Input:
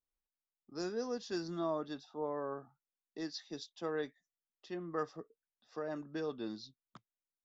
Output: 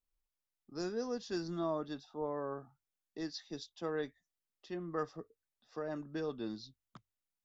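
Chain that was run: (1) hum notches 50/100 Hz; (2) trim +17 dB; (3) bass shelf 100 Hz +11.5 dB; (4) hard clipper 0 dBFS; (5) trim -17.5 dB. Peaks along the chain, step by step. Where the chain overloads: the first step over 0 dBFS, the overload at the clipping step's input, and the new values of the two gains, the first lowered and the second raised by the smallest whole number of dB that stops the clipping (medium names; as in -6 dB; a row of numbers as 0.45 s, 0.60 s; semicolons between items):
-24.0 dBFS, -7.0 dBFS, -6.0 dBFS, -6.0 dBFS, -23.5 dBFS; nothing clips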